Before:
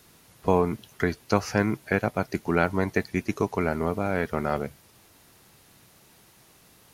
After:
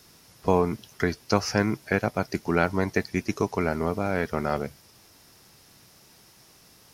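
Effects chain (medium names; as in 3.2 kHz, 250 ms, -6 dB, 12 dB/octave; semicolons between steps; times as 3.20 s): peaking EQ 5.3 kHz +9.5 dB 0.35 oct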